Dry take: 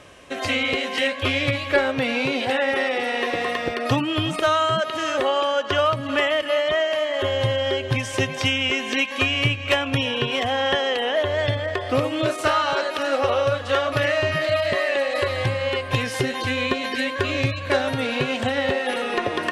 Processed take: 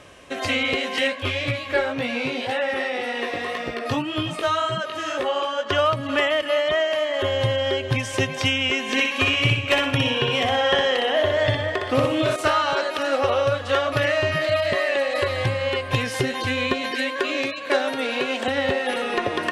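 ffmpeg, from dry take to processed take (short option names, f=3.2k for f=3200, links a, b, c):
-filter_complex "[0:a]asplit=3[a][b][c];[a]afade=t=out:st=1.14:d=0.02[d];[b]flanger=delay=16:depth=4.5:speed=1.9,afade=t=in:st=1.14:d=0.02,afade=t=out:st=5.68:d=0.02[e];[c]afade=t=in:st=5.68:d=0.02[f];[d][e][f]amix=inputs=3:normalize=0,asettb=1/sr,asplit=3[g][h][i];[g]atrim=end=8.834[j];[h]atrim=start=8.83:end=12.36,asetpts=PTS-STARTPTS,afade=t=in:d=0.004:c=qsin,afade=t=out:st=3.526:d=0.004:c=qsin,aecho=1:1:61|122|183|244|305:0.631|0.227|0.0818|0.0294|0.0106,atrim=end_sample=155673[k];[i]atrim=start=12.356[l];[j][k]acrossfade=d=0.004:c1=hsin:c2=qsin[m];[m][l]acrossfade=d=0.004:c1=qsin:c2=hsin,asettb=1/sr,asplit=3[n][o][p];[n]atrim=end=16.914[q];[o]atrim=start=16.91:end=18.48,asetpts=PTS-STARTPTS,afade=t=in:d=0.004:c=qsin,afade=t=out:st=1.566:d=0.004:c=qsin,highpass=f=250:w=0.5412,highpass=f=250:w=1.3066[r];[p]atrim=start=18.476[s];[q][r]acrossfade=d=0.004:c1=hsin:c2=qsin[t];[t][s]acrossfade=d=0.004:c1=qsin:c2=hsin"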